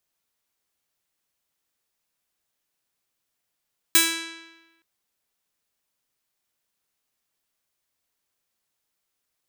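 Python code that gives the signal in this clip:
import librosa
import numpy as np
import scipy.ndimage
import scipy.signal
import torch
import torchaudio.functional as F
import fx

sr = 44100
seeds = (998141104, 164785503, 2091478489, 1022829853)

y = fx.pluck(sr, length_s=0.87, note=64, decay_s=1.16, pick=0.46, brightness='bright')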